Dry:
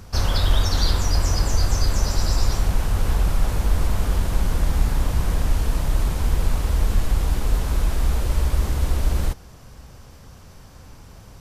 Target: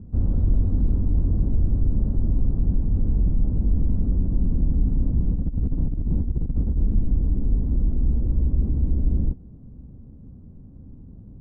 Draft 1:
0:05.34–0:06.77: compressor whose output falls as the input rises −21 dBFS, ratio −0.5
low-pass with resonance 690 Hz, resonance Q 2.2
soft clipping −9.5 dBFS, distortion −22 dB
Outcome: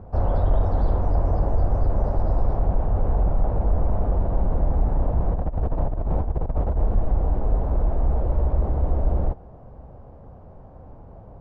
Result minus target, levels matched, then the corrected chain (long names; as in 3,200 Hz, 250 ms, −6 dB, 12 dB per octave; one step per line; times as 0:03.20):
500 Hz band +13.0 dB
0:05.34–0:06.77: compressor whose output falls as the input rises −21 dBFS, ratio −0.5
low-pass with resonance 250 Hz, resonance Q 2.2
soft clipping −9.5 dBFS, distortion −21 dB